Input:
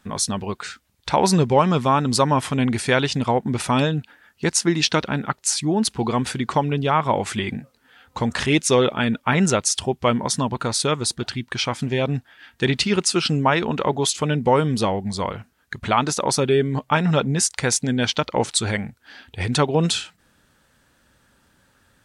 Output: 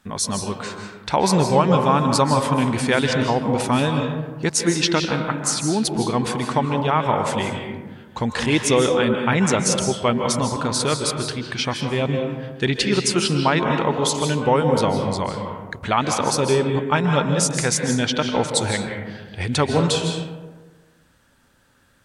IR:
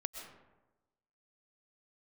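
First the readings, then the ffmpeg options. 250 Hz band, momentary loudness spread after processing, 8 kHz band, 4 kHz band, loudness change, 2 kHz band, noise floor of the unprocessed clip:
+1.0 dB, 9 LU, 0.0 dB, 0.0 dB, +0.5 dB, +0.5 dB, −62 dBFS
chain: -filter_complex "[1:a]atrim=start_sample=2205,asetrate=35280,aresample=44100[link_01];[0:a][link_01]afir=irnorm=-1:irlink=0"

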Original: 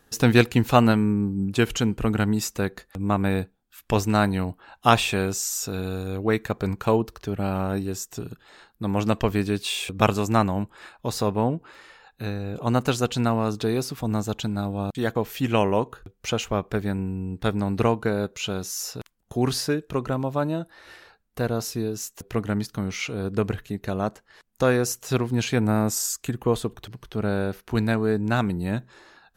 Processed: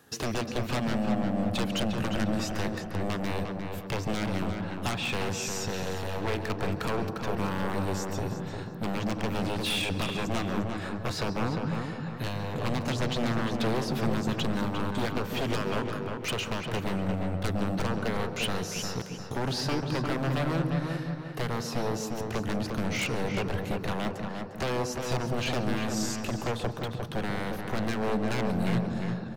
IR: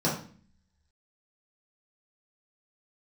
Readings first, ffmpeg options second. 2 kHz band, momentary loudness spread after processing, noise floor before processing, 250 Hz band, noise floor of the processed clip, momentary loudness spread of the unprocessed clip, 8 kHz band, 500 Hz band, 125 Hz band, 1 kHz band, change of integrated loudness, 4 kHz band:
−3.5 dB, 5 LU, −65 dBFS, −5.5 dB, −38 dBFS, 10 LU, −7.5 dB, −6.5 dB, −5.5 dB, −6.0 dB, −6.0 dB, −2.5 dB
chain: -filter_complex "[0:a]acrossover=split=4800[link_01][link_02];[link_02]acompressor=threshold=-48dB:ratio=4:attack=1:release=60[link_03];[link_01][link_03]amix=inputs=2:normalize=0,highpass=frequency=76:width=0.5412,highpass=frequency=76:width=1.3066,acompressor=threshold=-23dB:ratio=16,aeval=exprs='0.0447*(abs(mod(val(0)/0.0447+3,4)-2)-1)':channel_layout=same,asplit=2[link_04][link_05];[link_05]adelay=352,lowpass=frequency=2500:poles=1,volume=-4.5dB,asplit=2[link_06][link_07];[link_07]adelay=352,lowpass=frequency=2500:poles=1,volume=0.44,asplit=2[link_08][link_09];[link_09]adelay=352,lowpass=frequency=2500:poles=1,volume=0.44,asplit=2[link_10][link_11];[link_11]adelay=352,lowpass=frequency=2500:poles=1,volume=0.44,asplit=2[link_12][link_13];[link_13]adelay=352,lowpass=frequency=2500:poles=1,volume=0.44[link_14];[link_04][link_06][link_08][link_10][link_12][link_14]amix=inputs=6:normalize=0,asplit=2[link_15][link_16];[1:a]atrim=start_sample=2205,adelay=135[link_17];[link_16][link_17]afir=irnorm=-1:irlink=0,volume=-22.5dB[link_18];[link_15][link_18]amix=inputs=2:normalize=0,volume=2.5dB"

